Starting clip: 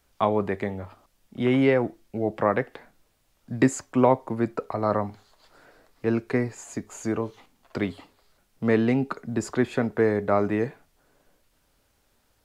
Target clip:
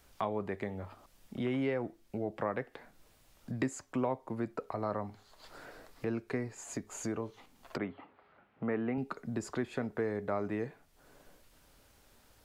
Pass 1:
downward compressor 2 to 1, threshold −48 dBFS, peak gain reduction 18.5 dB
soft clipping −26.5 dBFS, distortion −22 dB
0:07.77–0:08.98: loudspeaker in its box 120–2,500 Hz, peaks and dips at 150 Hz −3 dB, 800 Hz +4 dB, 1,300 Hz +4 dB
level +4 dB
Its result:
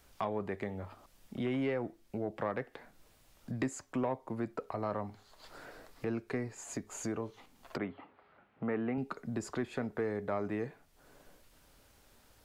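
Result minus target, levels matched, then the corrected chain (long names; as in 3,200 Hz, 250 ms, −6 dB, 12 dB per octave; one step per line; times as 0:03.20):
soft clipping: distortion +15 dB
downward compressor 2 to 1, threshold −48 dBFS, peak gain reduction 18.5 dB
soft clipping −18 dBFS, distortion −37 dB
0:07.77–0:08.98: loudspeaker in its box 120–2,500 Hz, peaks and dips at 150 Hz −3 dB, 800 Hz +4 dB, 1,300 Hz +4 dB
level +4 dB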